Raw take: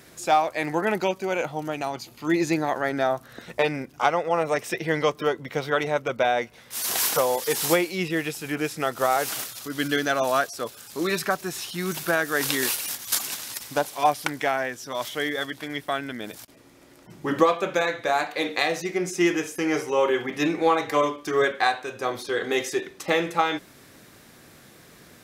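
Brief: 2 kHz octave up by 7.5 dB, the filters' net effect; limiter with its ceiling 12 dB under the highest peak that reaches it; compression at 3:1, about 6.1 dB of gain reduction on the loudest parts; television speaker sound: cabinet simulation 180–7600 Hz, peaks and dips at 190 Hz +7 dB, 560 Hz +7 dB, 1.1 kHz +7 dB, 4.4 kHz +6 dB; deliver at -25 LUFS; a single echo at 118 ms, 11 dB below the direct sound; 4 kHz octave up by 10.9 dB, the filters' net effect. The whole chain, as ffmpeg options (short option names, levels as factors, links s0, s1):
-af "equalizer=f=2000:t=o:g=6.5,equalizer=f=4000:t=o:g=8.5,acompressor=threshold=0.0891:ratio=3,alimiter=limit=0.2:level=0:latency=1,highpass=f=180:w=0.5412,highpass=f=180:w=1.3066,equalizer=f=190:t=q:w=4:g=7,equalizer=f=560:t=q:w=4:g=7,equalizer=f=1100:t=q:w=4:g=7,equalizer=f=4400:t=q:w=4:g=6,lowpass=f=7600:w=0.5412,lowpass=f=7600:w=1.3066,aecho=1:1:118:0.282,volume=0.944"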